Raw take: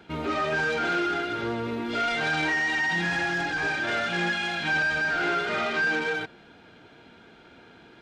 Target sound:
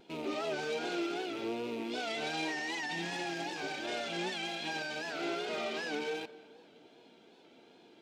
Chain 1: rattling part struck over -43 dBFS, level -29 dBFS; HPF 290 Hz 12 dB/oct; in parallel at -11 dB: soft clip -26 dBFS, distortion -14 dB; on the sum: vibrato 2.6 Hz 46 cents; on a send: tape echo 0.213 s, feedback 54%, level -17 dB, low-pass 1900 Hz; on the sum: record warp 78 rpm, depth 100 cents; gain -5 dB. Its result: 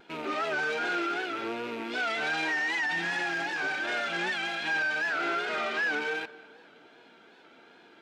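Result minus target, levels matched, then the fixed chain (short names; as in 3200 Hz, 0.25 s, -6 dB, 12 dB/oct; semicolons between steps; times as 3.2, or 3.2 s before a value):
2000 Hz band +4.5 dB
rattling part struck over -43 dBFS, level -29 dBFS; HPF 290 Hz 12 dB/oct; bell 1500 Hz -14.5 dB 1.2 oct; in parallel at -11 dB: soft clip -26 dBFS, distortion -21 dB; on the sum: vibrato 2.6 Hz 46 cents; on a send: tape echo 0.213 s, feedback 54%, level -17 dB, low-pass 1900 Hz; on the sum: record warp 78 rpm, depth 100 cents; gain -5 dB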